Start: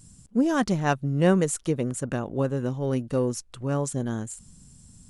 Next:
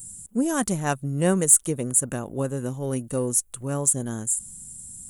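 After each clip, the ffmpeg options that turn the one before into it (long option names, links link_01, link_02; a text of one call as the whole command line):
ffmpeg -i in.wav -af "aexciter=amount=6.3:drive=8.9:freq=7300,volume=-1.5dB" out.wav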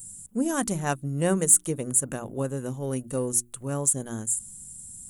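ffmpeg -i in.wav -af "bandreject=frequency=60:width_type=h:width=6,bandreject=frequency=120:width_type=h:width=6,bandreject=frequency=180:width_type=h:width=6,bandreject=frequency=240:width_type=h:width=6,bandreject=frequency=300:width_type=h:width=6,bandreject=frequency=360:width_type=h:width=6,volume=-2dB" out.wav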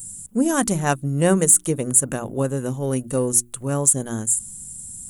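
ffmpeg -i in.wav -af "alimiter=level_in=7.5dB:limit=-1dB:release=50:level=0:latency=1,volume=-1dB" out.wav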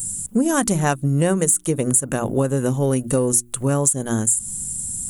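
ffmpeg -i in.wav -af "acompressor=threshold=-24dB:ratio=6,volume=8.5dB" out.wav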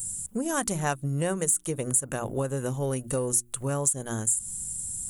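ffmpeg -i in.wav -af "equalizer=frequency=240:width=1:gain=-6,volume=-6.5dB" out.wav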